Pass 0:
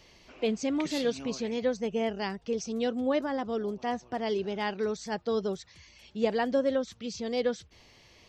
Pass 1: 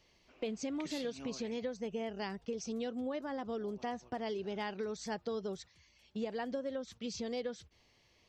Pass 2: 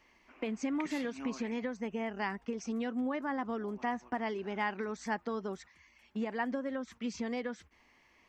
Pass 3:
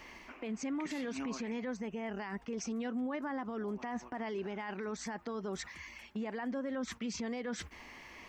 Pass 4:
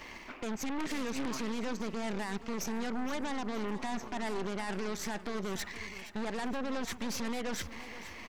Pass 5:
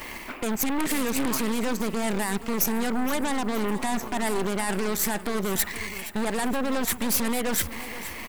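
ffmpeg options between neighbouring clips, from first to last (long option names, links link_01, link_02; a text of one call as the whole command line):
ffmpeg -i in.wav -af "agate=range=-10dB:threshold=-46dB:ratio=16:detection=peak,acompressor=threshold=-34dB:ratio=6,volume=-1.5dB" out.wav
ffmpeg -i in.wav -af "equalizer=frequency=125:width_type=o:width=1:gain=-10,equalizer=frequency=250:width_type=o:width=1:gain=8,equalizer=frequency=500:width_type=o:width=1:gain=-4,equalizer=frequency=1000:width_type=o:width=1:gain=8,equalizer=frequency=2000:width_type=o:width=1:gain=9,equalizer=frequency=4000:width_type=o:width=1:gain=-8" out.wav
ffmpeg -i in.wav -af "areverse,acompressor=threshold=-43dB:ratio=6,areverse,alimiter=level_in=21dB:limit=-24dB:level=0:latency=1:release=69,volume=-21dB,volume=14dB" out.wav
ffmpeg -i in.wav -af "aeval=exprs='0.0299*(cos(1*acos(clip(val(0)/0.0299,-1,1)))-cos(1*PI/2))+0.00841*(cos(2*acos(clip(val(0)/0.0299,-1,1)))-cos(2*PI/2))+0.00944*(cos(5*acos(clip(val(0)/0.0299,-1,1)))-cos(5*PI/2))+0.00596*(cos(6*acos(clip(val(0)/0.0299,-1,1)))-cos(6*PI/2))+0.00422*(cos(7*acos(clip(val(0)/0.0299,-1,1)))-cos(7*PI/2))':channel_layout=same,aecho=1:1:470|940|1410|1880:0.188|0.0866|0.0399|0.0183" out.wav
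ffmpeg -i in.wav -af "aexciter=amount=3.6:drive=8.6:freq=8200,volume=9dB" out.wav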